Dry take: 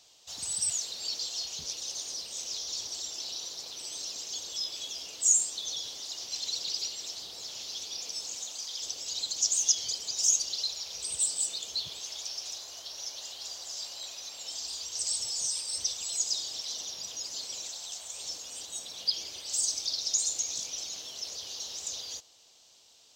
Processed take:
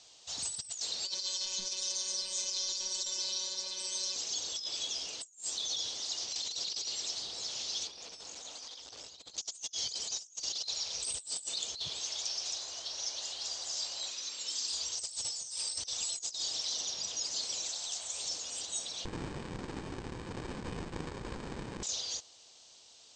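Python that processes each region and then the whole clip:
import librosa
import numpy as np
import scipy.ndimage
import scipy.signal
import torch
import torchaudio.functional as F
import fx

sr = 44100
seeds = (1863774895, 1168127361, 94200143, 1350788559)

y = fx.chain(x, sr, fx.robotise(hz=188.0),
    fx.comb(ms=3.4, depth=0.94), at=(1.05, 4.16))
y = fx.chain(y, sr, fx.lowpass(hz=2000.0, slope=6),
    fx.over_compress(threshold_db=-48.0, ratio=-0.5),
    fx.transformer_sat(knee_hz=3100.0), at=(7.87, 9.38))
y = fx.chain(y, sr, fx.highpass(hz=160.0, slope=24),
    fx.peak_eq(hz=710.0, db=-11.0, octaves=0.59), at=(14.1, 14.73))
y = fx.chain(y, sr, fx.bessel_highpass(hz=260.0, order=8),
    fx.resample_bad(factor=8, down='filtered', up='zero_stuff'),
    fx.running_max(window=65), at=(19.05, 21.83))
y = fx.over_compress(y, sr, threshold_db=-36.0, ratio=-0.5)
y = scipy.signal.sosfilt(scipy.signal.cheby1(10, 1.0, 8700.0, 'lowpass', fs=sr, output='sos'), y)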